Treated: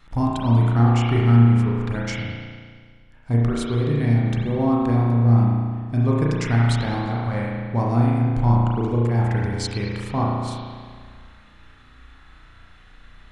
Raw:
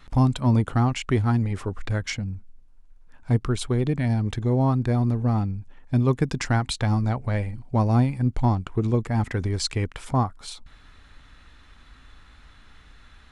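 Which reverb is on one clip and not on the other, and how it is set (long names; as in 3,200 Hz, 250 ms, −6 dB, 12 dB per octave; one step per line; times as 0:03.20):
spring reverb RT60 1.8 s, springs 34 ms, chirp 80 ms, DRR −4.5 dB
level −3 dB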